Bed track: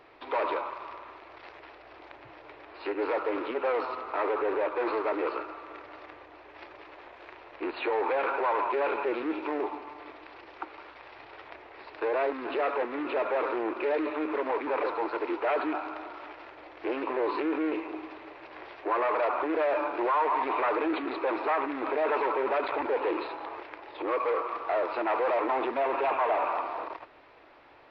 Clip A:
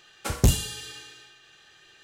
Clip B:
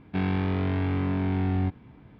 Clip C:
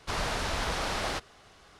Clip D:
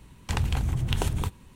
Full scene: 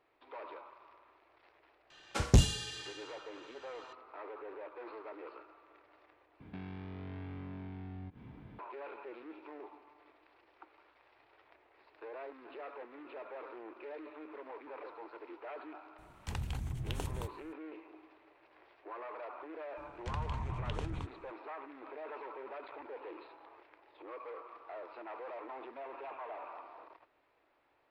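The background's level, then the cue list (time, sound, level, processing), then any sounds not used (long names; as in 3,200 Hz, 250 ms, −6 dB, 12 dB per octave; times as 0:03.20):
bed track −18 dB
0:01.90: mix in A −3.5 dB + low-pass filter 6,400 Hz
0:06.40: overwrite with B −1.5 dB + downward compressor 5 to 1, threshold −42 dBFS
0:15.98: mix in D −12 dB
0:19.77: mix in D −12 dB + high-frequency loss of the air 110 metres
not used: C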